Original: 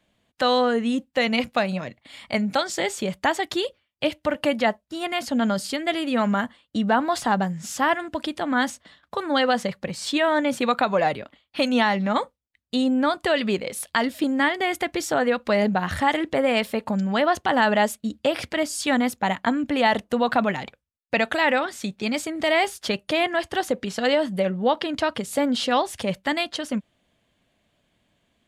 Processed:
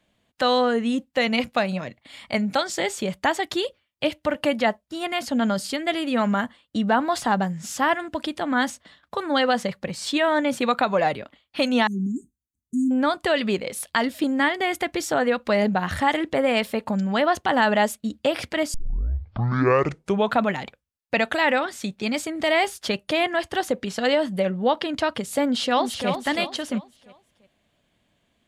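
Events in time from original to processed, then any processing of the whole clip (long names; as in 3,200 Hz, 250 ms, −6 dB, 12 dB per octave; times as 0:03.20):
0:11.87–0:12.91: linear-phase brick-wall band-stop 390–5,900 Hz
0:18.74: tape start 1.68 s
0:25.44–0:26.10: delay throw 340 ms, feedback 35%, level −7 dB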